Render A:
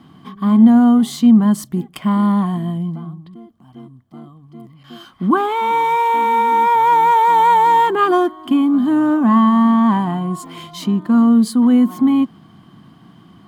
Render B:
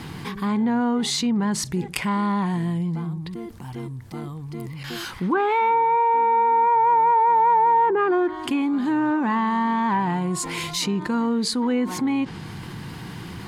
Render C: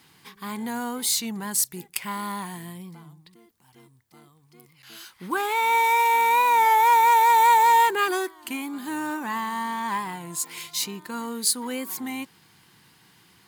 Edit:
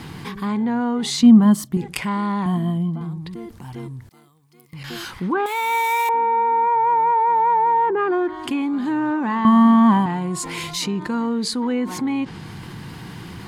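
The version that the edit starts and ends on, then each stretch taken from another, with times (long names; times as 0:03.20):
B
0:01.23–0:01.77: punch in from A
0:02.46–0:03.01: punch in from A
0:04.09–0:04.73: punch in from C
0:05.46–0:06.09: punch in from C
0:09.45–0:10.06: punch in from A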